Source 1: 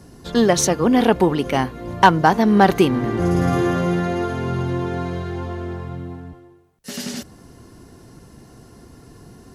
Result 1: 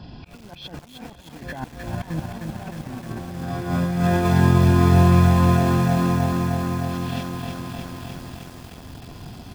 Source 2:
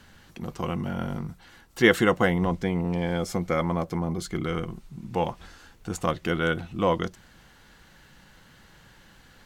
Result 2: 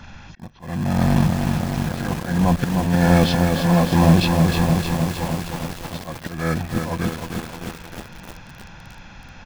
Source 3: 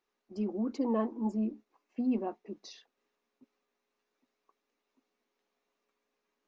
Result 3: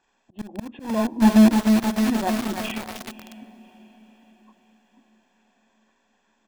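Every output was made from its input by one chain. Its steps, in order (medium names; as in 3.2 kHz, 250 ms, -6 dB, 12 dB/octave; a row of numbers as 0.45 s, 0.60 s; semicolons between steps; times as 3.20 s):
knee-point frequency compression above 1 kHz 1.5:1; in parallel at -8 dB: bit crusher 5-bit; on the sum: compressor with a negative ratio -20 dBFS, ratio -0.5; dynamic bell 910 Hz, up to -4 dB, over -38 dBFS, Q 3; slow attack 604 ms; comb 1.2 ms, depth 57%; echo that smears into a reverb 575 ms, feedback 46%, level -16 dB; bit-crushed delay 308 ms, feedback 80%, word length 7-bit, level -4 dB; normalise loudness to -20 LUFS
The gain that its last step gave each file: -2.0 dB, +10.0 dB, +14.5 dB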